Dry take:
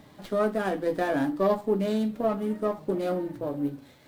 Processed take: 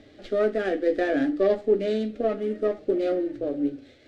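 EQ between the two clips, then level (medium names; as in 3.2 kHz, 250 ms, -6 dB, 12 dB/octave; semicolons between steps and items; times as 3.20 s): dynamic bell 1.9 kHz, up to +4 dB, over -49 dBFS, Q 3.7; distance through air 130 m; static phaser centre 400 Hz, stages 4; +5.5 dB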